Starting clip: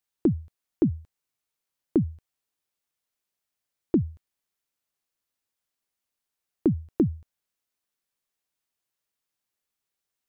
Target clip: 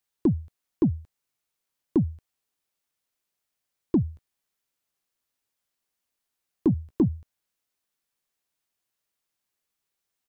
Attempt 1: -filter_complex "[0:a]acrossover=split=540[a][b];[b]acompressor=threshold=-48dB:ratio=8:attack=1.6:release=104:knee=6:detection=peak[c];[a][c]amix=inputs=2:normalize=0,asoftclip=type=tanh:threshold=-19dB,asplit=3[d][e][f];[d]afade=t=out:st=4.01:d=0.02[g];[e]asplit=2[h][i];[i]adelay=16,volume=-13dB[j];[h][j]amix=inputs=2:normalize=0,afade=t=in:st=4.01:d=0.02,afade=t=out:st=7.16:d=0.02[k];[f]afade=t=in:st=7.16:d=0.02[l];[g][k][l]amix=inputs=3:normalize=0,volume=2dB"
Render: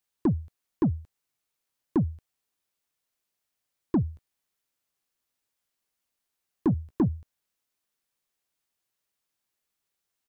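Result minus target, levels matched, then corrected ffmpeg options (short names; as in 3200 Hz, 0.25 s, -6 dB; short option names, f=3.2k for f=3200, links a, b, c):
soft clip: distortion +9 dB
-filter_complex "[0:a]acrossover=split=540[a][b];[b]acompressor=threshold=-48dB:ratio=8:attack=1.6:release=104:knee=6:detection=peak[c];[a][c]amix=inputs=2:normalize=0,asoftclip=type=tanh:threshold=-13dB,asplit=3[d][e][f];[d]afade=t=out:st=4.01:d=0.02[g];[e]asplit=2[h][i];[i]adelay=16,volume=-13dB[j];[h][j]amix=inputs=2:normalize=0,afade=t=in:st=4.01:d=0.02,afade=t=out:st=7.16:d=0.02[k];[f]afade=t=in:st=7.16:d=0.02[l];[g][k][l]amix=inputs=3:normalize=0,volume=2dB"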